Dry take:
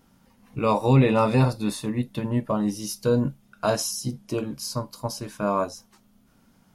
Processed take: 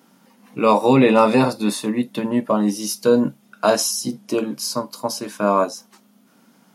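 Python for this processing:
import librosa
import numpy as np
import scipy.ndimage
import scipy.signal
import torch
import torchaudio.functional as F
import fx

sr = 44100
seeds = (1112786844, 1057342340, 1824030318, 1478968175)

y = scipy.signal.sosfilt(scipy.signal.butter(4, 190.0, 'highpass', fs=sr, output='sos'), x)
y = F.gain(torch.from_numpy(y), 7.0).numpy()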